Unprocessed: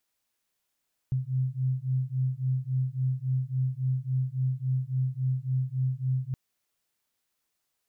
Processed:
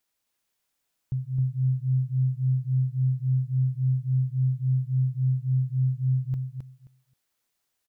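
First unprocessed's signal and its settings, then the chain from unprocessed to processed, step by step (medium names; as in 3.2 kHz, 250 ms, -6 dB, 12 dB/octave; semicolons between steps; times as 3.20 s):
beating tones 128 Hz, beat 3.6 Hz, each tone -28.5 dBFS 5.22 s
feedback delay 265 ms, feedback 17%, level -4.5 dB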